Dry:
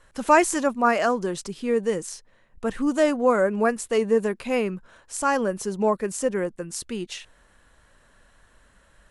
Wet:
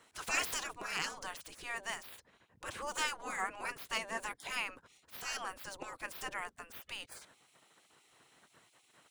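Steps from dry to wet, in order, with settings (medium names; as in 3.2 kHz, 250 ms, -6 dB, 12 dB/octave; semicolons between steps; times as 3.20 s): median filter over 3 samples; spectral gate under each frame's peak -20 dB weak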